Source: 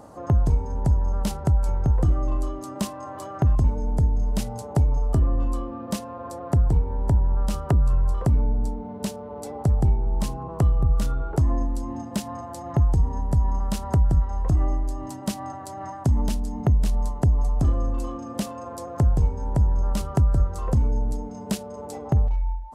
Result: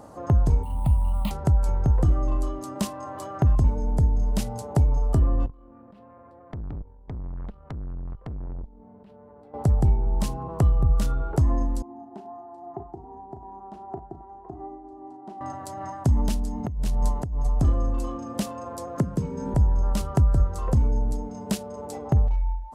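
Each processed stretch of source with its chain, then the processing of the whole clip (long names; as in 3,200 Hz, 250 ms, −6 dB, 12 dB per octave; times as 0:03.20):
0:00.63–0:01.31: sample-rate reduction 9,300 Hz + phaser with its sweep stopped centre 1,600 Hz, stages 6
0:05.46–0:09.54: output level in coarse steps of 22 dB + high-frequency loss of the air 450 metres + tube saturation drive 31 dB, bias 0.75
0:11.82–0:15.41: delay that plays each chunk backwards 195 ms, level −14 dB + pair of resonant band-passes 530 Hz, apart 0.97 octaves + double-tracking delay 36 ms −10 dB
0:16.64–0:17.47: notch filter 1,200 Hz, Q 23 + compressor whose output falls as the input rises −22 dBFS, ratio −0.5
0:18.97–0:19.54: high-pass with resonance 180 Hz, resonance Q 1.7 + parametric band 780 Hz −14.5 dB 0.33 octaves + multiband upward and downward compressor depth 70%
whole clip: no processing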